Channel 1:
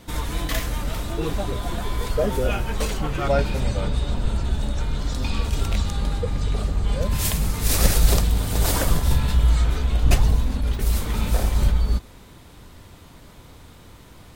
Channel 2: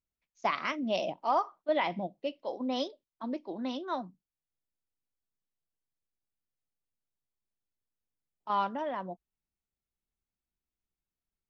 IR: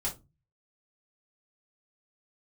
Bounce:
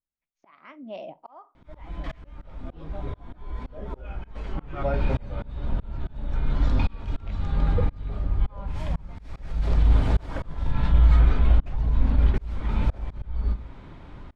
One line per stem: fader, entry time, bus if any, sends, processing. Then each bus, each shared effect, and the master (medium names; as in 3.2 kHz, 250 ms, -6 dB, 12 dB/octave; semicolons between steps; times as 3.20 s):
0.0 dB, 1.55 s, send -11.5 dB, peak limiter -12.5 dBFS, peak gain reduction 9.5 dB; auto duck -9 dB, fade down 0.60 s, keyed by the second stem
-5.5 dB, 0.00 s, send -18.5 dB, none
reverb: on, RT60 0.25 s, pre-delay 3 ms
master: low-pass 2.2 kHz 12 dB/octave; slow attack 568 ms